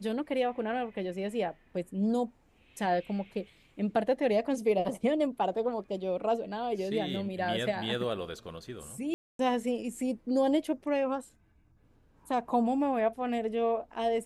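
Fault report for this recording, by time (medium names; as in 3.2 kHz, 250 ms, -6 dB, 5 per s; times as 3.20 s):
9.14–9.39 s: dropout 252 ms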